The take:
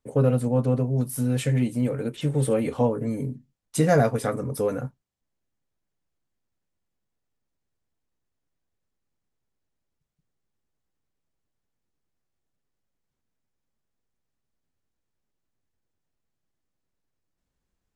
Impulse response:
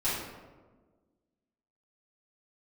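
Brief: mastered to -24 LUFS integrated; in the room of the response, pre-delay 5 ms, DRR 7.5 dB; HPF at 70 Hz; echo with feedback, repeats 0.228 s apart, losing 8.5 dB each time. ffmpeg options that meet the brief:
-filter_complex "[0:a]highpass=70,aecho=1:1:228|456|684|912:0.376|0.143|0.0543|0.0206,asplit=2[a][b];[1:a]atrim=start_sample=2205,adelay=5[c];[b][c]afir=irnorm=-1:irlink=0,volume=-16.5dB[d];[a][d]amix=inputs=2:normalize=0,volume=-0.5dB"

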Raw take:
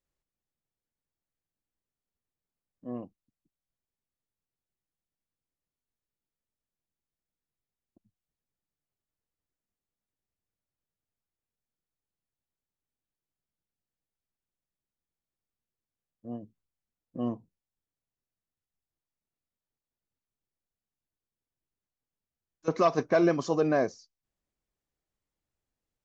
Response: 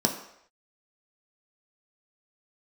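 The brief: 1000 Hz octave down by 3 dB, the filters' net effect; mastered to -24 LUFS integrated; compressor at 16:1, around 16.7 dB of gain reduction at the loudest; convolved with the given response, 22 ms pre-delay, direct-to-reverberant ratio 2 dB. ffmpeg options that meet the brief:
-filter_complex "[0:a]equalizer=f=1k:t=o:g=-4.5,acompressor=threshold=-37dB:ratio=16,asplit=2[a][b];[1:a]atrim=start_sample=2205,adelay=22[c];[b][c]afir=irnorm=-1:irlink=0,volume=-13dB[d];[a][d]amix=inputs=2:normalize=0,volume=15.5dB"

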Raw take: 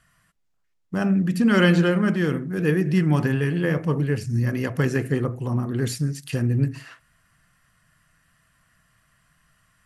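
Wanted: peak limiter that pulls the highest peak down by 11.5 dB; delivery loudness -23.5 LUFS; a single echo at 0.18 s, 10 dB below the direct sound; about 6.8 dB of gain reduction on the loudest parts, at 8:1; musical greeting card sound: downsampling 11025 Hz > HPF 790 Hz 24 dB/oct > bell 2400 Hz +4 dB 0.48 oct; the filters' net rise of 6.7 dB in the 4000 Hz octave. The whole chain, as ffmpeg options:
-af "equalizer=f=4k:t=o:g=8.5,acompressor=threshold=-20dB:ratio=8,alimiter=limit=-21dB:level=0:latency=1,aecho=1:1:180:0.316,aresample=11025,aresample=44100,highpass=f=790:w=0.5412,highpass=f=790:w=1.3066,equalizer=f=2.4k:t=o:w=0.48:g=4,volume=14.5dB"

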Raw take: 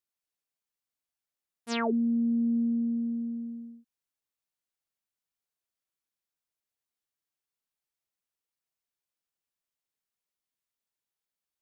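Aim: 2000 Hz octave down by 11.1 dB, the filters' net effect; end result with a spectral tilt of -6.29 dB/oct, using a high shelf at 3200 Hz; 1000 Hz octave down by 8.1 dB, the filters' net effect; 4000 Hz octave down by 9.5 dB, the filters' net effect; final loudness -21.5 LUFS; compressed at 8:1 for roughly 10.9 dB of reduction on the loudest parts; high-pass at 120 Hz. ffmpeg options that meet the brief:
-af "highpass=120,equalizer=f=1k:t=o:g=-8.5,equalizer=f=2k:t=o:g=-8.5,highshelf=f=3.2k:g=-4.5,equalizer=f=4k:t=o:g=-5.5,acompressor=threshold=-37dB:ratio=8,volume=18.5dB"

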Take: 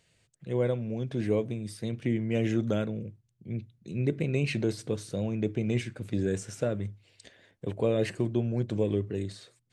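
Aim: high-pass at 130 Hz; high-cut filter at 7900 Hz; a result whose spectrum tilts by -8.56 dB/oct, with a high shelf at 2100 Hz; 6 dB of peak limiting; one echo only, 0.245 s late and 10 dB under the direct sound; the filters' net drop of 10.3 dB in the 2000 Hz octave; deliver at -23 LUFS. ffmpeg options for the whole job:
-af "highpass=130,lowpass=7.9k,equalizer=f=2k:t=o:g=-7.5,highshelf=f=2.1k:g=-9,alimiter=limit=-22dB:level=0:latency=1,aecho=1:1:245:0.316,volume=11dB"

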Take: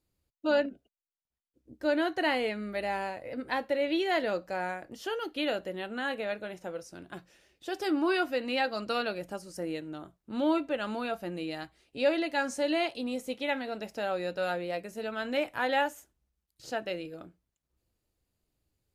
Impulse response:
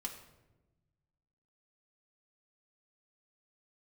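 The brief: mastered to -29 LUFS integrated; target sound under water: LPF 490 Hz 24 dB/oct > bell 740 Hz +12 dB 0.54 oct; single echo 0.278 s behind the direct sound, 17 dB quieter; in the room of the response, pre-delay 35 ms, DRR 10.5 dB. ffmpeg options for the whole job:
-filter_complex "[0:a]aecho=1:1:278:0.141,asplit=2[a][b];[1:a]atrim=start_sample=2205,adelay=35[c];[b][c]afir=irnorm=-1:irlink=0,volume=-9dB[d];[a][d]amix=inputs=2:normalize=0,lowpass=f=490:w=0.5412,lowpass=f=490:w=1.3066,equalizer=f=740:t=o:w=0.54:g=12,volume=5dB"

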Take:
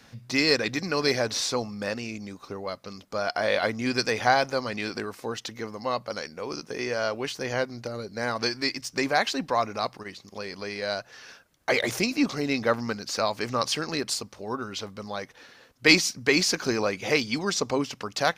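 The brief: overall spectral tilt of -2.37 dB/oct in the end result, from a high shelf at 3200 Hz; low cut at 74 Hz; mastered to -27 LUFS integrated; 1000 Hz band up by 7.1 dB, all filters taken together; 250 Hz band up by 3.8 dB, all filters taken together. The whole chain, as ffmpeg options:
-af "highpass=74,equalizer=f=250:t=o:g=4,equalizer=f=1k:t=o:g=8.5,highshelf=f=3.2k:g=8,volume=-4.5dB"

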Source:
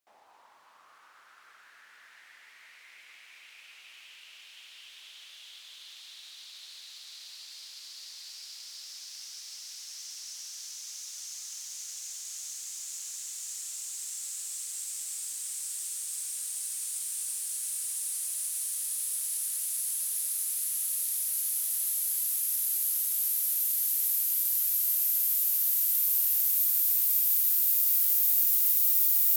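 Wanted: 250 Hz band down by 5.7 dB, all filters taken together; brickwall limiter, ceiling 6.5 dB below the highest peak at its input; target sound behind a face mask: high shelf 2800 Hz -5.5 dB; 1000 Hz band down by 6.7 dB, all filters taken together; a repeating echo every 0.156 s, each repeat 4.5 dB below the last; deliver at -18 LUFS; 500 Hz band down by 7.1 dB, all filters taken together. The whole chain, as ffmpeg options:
-af "equalizer=f=250:t=o:g=-5,equalizer=f=500:t=o:g=-5.5,equalizer=f=1k:t=o:g=-6.5,alimiter=limit=-17.5dB:level=0:latency=1,highshelf=f=2.8k:g=-5.5,aecho=1:1:156|312|468|624|780|936|1092|1248|1404:0.596|0.357|0.214|0.129|0.0772|0.0463|0.0278|0.0167|0.01,volume=13dB"

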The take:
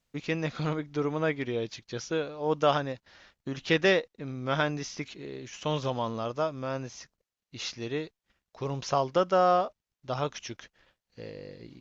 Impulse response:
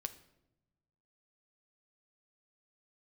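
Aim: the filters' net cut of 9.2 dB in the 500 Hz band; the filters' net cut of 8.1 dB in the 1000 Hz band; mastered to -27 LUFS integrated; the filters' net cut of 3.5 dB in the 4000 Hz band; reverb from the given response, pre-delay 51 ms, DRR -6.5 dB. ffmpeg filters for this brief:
-filter_complex "[0:a]equalizer=f=500:t=o:g=-9,equalizer=f=1k:t=o:g=-8,equalizer=f=4k:t=o:g=-4,asplit=2[a][b];[1:a]atrim=start_sample=2205,adelay=51[c];[b][c]afir=irnorm=-1:irlink=0,volume=8.5dB[d];[a][d]amix=inputs=2:normalize=0,volume=1dB"

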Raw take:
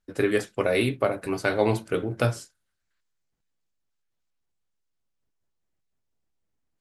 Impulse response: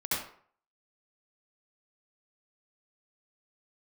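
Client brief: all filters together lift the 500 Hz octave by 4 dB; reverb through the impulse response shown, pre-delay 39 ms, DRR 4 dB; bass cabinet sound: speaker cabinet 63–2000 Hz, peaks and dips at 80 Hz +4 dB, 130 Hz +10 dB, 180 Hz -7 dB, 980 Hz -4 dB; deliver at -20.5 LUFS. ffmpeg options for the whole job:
-filter_complex "[0:a]equalizer=f=500:t=o:g=5,asplit=2[a][b];[1:a]atrim=start_sample=2205,adelay=39[c];[b][c]afir=irnorm=-1:irlink=0,volume=-11.5dB[d];[a][d]amix=inputs=2:normalize=0,highpass=f=63:w=0.5412,highpass=f=63:w=1.3066,equalizer=f=80:t=q:w=4:g=4,equalizer=f=130:t=q:w=4:g=10,equalizer=f=180:t=q:w=4:g=-7,equalizer=f=980:t=q:w=4:g=-4,lowpass=f=2k:w=0.5412,lowpass=f=2k:w=1.3066,volume=1dB"

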